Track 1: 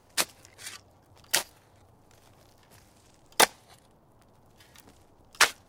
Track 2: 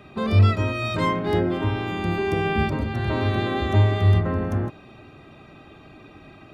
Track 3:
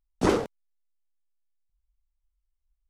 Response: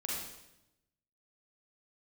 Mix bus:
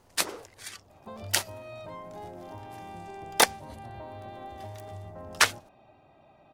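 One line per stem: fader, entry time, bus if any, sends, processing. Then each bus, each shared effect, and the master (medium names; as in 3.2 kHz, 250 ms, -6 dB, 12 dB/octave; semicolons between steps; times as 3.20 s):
-0.5 dB, 0.00 s, no send, none
-16.5 dB, 0.90 s, no send, high-order bell 740 Hz +12 dB 1 oct; compression, threshold -23 dBFS, peak gain reduction 12 dB
-15.0 dB, 0.00 s, no send, high-pass 420 Hz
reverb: none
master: none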